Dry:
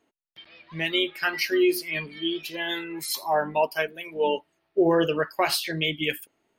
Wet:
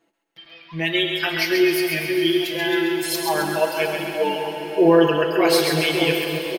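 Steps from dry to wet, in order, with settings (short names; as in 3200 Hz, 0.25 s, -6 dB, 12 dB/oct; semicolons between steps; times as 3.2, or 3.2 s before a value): comb 6 ms, depth 100%; split-band echo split 750 Hz, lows 0.577 s, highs 0.133 s, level -5.5 dB; on a send at -5 dB: reverb RT60 5.3 s, pre-delay 5 ms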